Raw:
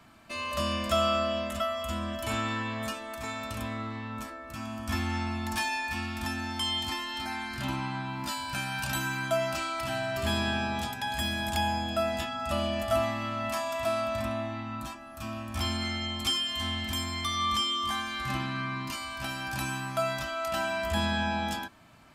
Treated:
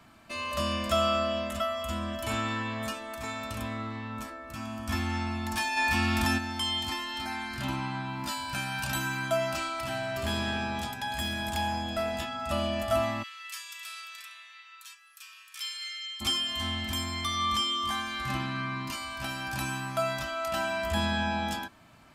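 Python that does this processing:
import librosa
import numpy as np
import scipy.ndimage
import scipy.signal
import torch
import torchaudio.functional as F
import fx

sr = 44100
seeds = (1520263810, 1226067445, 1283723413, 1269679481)

y = fx.env_flatten(x, sr, amount_pct=70, at=(5.76, 6.37), fade=0.02)
y = fx.tube_stage(y, sr, drive_db=22.0, bias=0.3, at=(9.68, 12.5))
y = fx.bessel_highpass(y, sr, hz=2500.0, order=6, at=(13.22, 16.2), fade=0.02)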